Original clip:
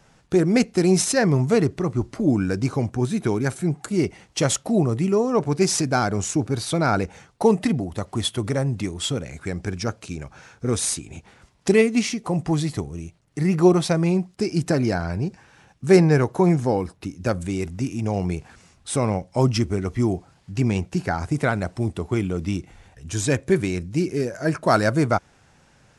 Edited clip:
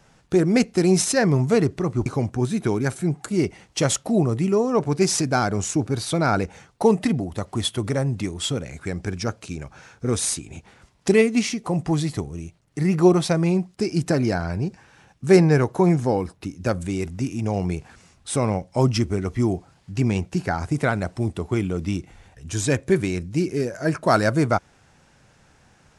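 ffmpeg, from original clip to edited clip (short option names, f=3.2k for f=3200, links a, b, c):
-filter_complex "[0:a]asplit=2[a][b];[a]atrim=end=2.062[c];[b]atrim=start=2.658[d];[c][d]acrossfade=d=0.004:c1=hsin:c2=hsin"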